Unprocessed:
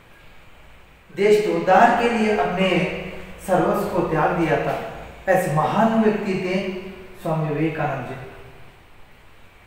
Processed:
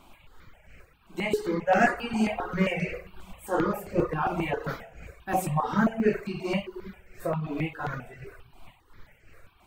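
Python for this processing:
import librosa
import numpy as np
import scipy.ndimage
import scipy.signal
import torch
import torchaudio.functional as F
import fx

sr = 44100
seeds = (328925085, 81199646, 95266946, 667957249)

y = fx.tremolo_shape(x, sr, shape='triangle', hz=2.8, depth_pct=45)
y = fx.dereverb_blind(y, sr, rt60_s=0.91)
y = fx.phaser_held(y, sr, hz=7.5, low_hz=480.0, high_hz=3600.0)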